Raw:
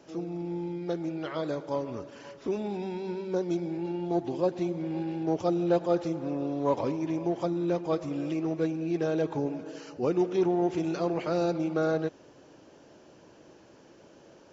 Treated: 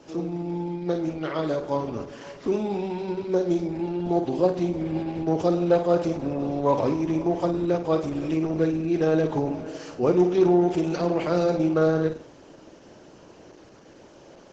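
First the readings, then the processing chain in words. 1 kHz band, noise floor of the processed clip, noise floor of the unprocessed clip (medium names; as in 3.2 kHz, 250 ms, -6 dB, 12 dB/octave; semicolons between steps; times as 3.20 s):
+5.5 dB, -50 dBFS, -55 dBFS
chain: flutter echo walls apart 8.7 m, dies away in 0.38 s; trim +6 dB; Opus 12 kbps 48 kHz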